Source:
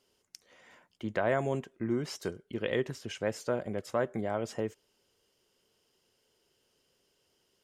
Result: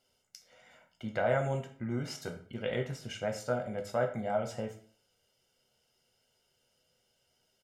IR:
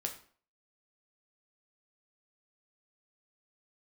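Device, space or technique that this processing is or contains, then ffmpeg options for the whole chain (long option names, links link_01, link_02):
microphone above a desk: -filter_complex "[0:a]aecho=1:1:1.4:0.57[link_01];[1:a]atrim=start_sample=2205[link_02];[link_01][link_02]afir=irnorm=-1:irlink=0,volume=-2.5dB"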